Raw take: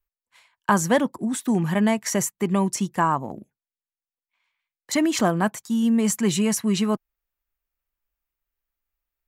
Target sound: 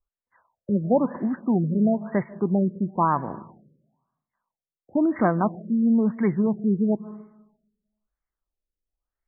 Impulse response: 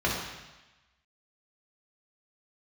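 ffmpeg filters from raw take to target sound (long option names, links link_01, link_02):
-filter_complex "[0:a]asplit=2[link_01][link_02];[1:a]atrim=start_sample=2205,adelay=141[link_03];[link_02][link_03]afir=irnorm=-1:irlink=0,volume=-32dB[link_04];[link_01][link_04]amix=inputs=2:normalize=0,afftfilt=real='re*lt(b*sr/1024,570*pow(2300/570,0.5+0.5*sin(2*PI*1*pts/sr)))':imag='im*lt(b*sr/1024,570*pow(2300/570,0.5+0.5*sin(2*PI*1*pts/sr)))':win_size=1024:overlap=0.75"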